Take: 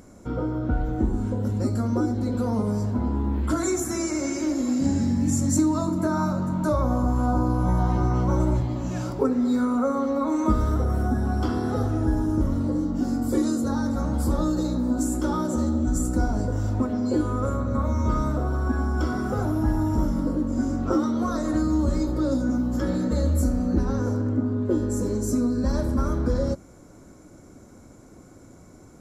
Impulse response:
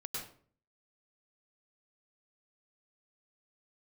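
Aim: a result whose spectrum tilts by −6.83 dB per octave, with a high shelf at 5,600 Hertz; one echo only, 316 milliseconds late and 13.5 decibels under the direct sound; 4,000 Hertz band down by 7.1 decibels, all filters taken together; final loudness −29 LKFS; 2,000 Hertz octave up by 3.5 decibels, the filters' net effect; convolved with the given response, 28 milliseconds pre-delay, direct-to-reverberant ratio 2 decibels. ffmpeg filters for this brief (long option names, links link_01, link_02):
-filter_complex "[0:a]equalizer=frequency=2000:width_type=o:gain=7.5,equalizer=frequency=4000:width_type=o:gain=-8,highshelf=frequency=5600:gain=-6,aecho=1:1:316:0.211,asplit=2[link_01][link_02];[1:a]atrim=start_sample=2205,adelay=28[link_03];[link_02][link_03]afir=irnorm=-1:irlink=0,volume=-2dB[link_04];[link_01][link_04]amix=inputs=2:normalize=0,volume=-6.5dB"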